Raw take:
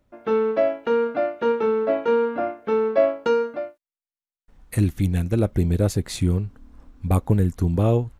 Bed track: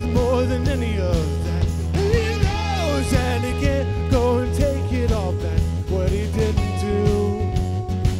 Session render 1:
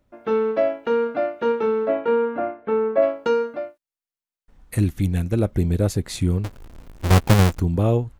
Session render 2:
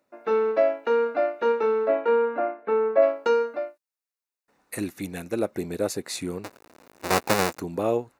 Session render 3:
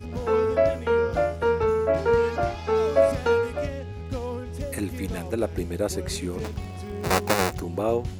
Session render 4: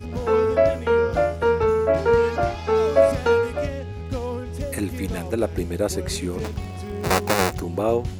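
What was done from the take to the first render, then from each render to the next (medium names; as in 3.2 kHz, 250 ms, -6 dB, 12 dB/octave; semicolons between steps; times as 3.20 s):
1.87–3.01 s: low-pass 3.3 kHz -> 2 kHz; 6.44–7.60 s: square wave that keeps the level
high-pass 360 Hz 12 dB/octave; band-stop 3.2 kHz, Q 5.7
add bed track -13 dB
trim +3 dB; peak limiter -3 dBFS, peak gain reduction 2 dB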